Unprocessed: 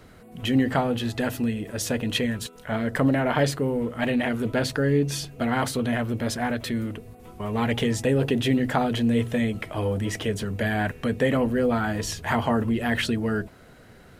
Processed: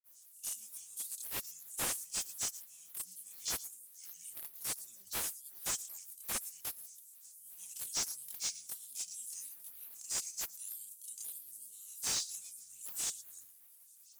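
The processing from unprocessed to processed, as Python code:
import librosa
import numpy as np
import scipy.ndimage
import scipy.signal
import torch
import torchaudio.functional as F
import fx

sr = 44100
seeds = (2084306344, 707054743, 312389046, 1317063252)

p1 = scipy.signal.sosfilt(scipy.signal.cheby2(4, 70, 2000.0, 'highpass', fs=sr, output='sos'), x)
p2 = fx.chorus_voices(p1, sr, voices=4, hz=0.77, base_ms=27, depth_ms=3.6, mix_pct=65)
p3 = fx.granulator(p2, sr, seeds[0], grain_ms=197.0, per_s=11.0, spray_ms=24.0, spread_st=7)
p4 = p3 + fx.echo_single(p3, sr, ms=116, db=-18.0, dry=0)
p5 = fx.slew_limit(p4, sr, full_power_hz=24.0)
y = F.gain(torch.from_numpy(p5), 16.5).numpy()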